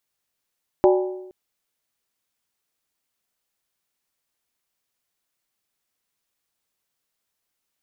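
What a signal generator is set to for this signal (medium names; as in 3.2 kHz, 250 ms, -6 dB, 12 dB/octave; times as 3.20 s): skin hit length 0.47 s, lowest mode 370 Hz, modes 5, decay 0.93 s, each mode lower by 4.5 dB, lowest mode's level -11 dB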